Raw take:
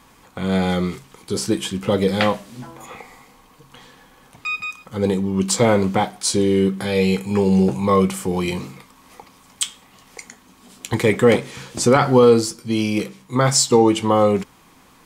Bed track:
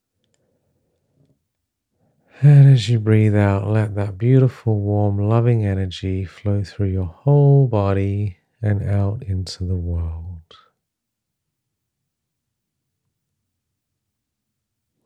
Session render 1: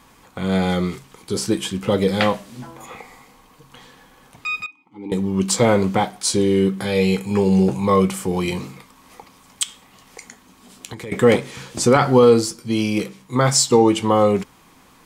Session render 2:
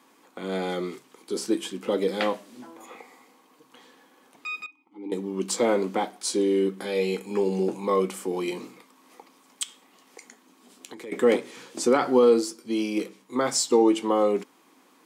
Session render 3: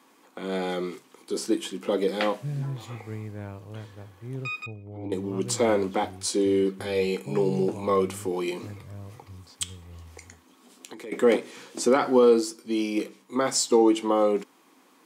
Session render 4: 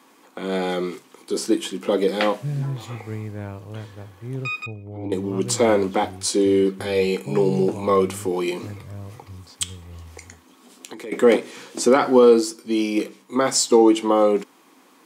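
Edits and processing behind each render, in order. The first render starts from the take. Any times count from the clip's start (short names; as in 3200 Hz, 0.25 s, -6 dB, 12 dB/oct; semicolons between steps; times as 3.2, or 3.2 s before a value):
4.66–5.12 vowel filter u; 9.63–11.12 compressor, threshold -30 dBFS
ladder high-pass 240 Hz, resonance 40%
add bed track -22 dB
gain +5 dB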